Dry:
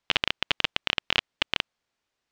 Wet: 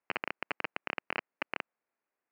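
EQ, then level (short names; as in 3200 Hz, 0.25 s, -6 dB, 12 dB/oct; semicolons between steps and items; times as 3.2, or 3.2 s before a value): HPF 260 Hz 12 dB/oct; Butterworth band-stop 3500 Hz, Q 1.8; air absorption 390 m; -2.5 dB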